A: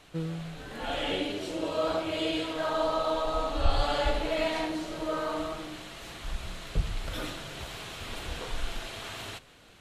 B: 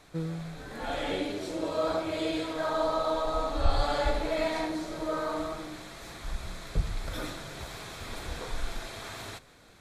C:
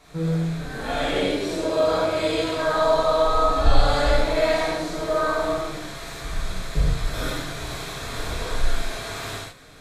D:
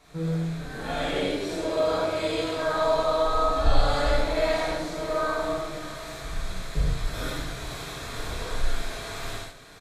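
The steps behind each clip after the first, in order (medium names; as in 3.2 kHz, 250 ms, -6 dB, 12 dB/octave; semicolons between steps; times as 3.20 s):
peaking EQ 2.9 kHz -13 dB 0.23 oct
gated-style reverb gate 160 ms flat, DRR -8 dB
delay 612 ms -14.5 dB; trim -4 dB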